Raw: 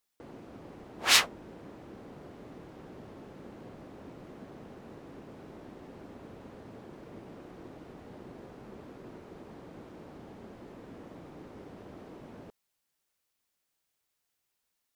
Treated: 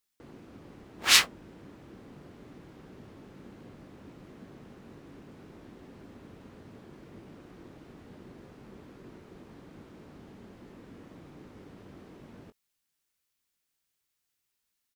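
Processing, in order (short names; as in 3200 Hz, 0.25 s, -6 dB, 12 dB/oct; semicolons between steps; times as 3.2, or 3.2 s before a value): bell 660 Hz -6.5 dB 1.6 oct; in parallel at -10 dB: bit-crush 6-bit; on the sum: doubler 21 ms -11.5 dB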